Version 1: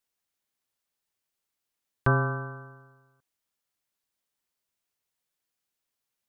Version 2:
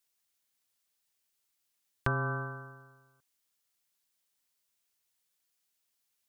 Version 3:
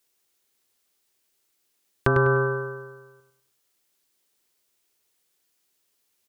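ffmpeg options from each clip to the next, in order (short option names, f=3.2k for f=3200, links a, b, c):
-af "highshelf=f=2.2k:g=8.5,acompressor=threshold=-24dB:ratio=6,volume=-2.5dB"
-filter_complex "[0:a]equalizer=f=380:t=o:w=0.85:g=9,asplit=2[a][b];[b]adelay=100,lowpass=f=4.6k:p=1,volume=-7dB,asplit=2[c][d];[d]adelay=100,lowpass=f=4.6k:p=1,volume=0.37,asplit=2[e][f];[f]adelay=100,lowpass=f=4.6k:p=1,volume=0.37,asplit=2[g][h];[h]adelay=100,lowpass=f=4.6k:p=1,volume=0.37[i];[c][e][g][i]amix=inputs=4:normalize=0[j];[a][j]amix=inputs=2:normalize=0,volume=7dB"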